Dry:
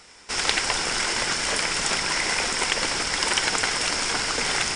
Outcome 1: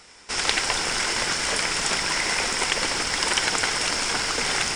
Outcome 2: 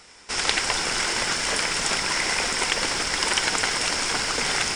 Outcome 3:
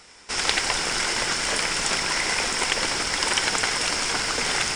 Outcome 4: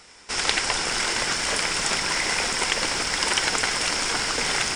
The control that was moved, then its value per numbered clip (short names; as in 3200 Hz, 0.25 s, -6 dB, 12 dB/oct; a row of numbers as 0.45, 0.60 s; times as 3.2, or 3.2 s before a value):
lo-fi delay, time: 141, 289, 88, 584 ms